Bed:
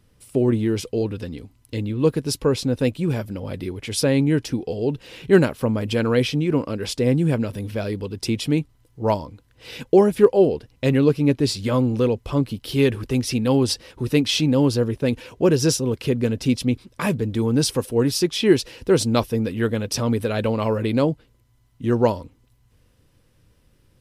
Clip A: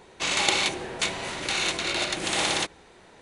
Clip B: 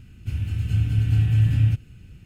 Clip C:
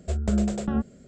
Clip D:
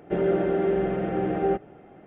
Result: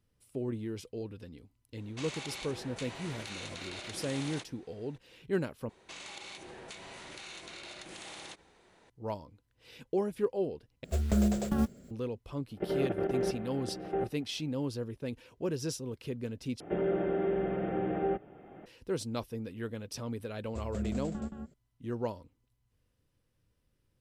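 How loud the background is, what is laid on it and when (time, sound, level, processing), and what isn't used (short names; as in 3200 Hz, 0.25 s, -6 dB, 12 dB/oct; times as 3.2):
bed -16.5 dB
1.77 add A -11 dB + compressor 4:1, threshold -29 dBFS
5.69 replace with A -10.5 dB + compressor 5:1, threshold -33 dBFS
10.84 replace with C -3 dB + block floating point 5-bit
12.5 add D -6 dB + level quantiser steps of 12 dB
16.6 replace with D -7 dB + three-band squash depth 40%
20.47 add C -13.5 dB + echo 0.173 s -5 dB
not used: B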